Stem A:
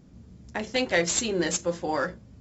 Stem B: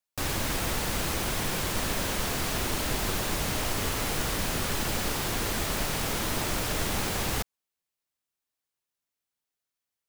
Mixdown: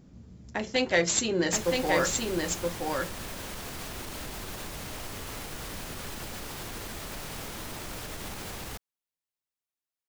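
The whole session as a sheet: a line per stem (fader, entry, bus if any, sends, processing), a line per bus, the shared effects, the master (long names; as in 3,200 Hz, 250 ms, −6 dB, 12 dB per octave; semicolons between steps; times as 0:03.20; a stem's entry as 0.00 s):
−0.5 dB, 0.00 s, no send, echo send −3.5 dB, no processing
−7.5 dB, 1.35 s, no send, no echo send, brickwall limiter −21 dBFS, peak gain reduction 6 dB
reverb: not used
echo: single-tap delay 973 ms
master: no processing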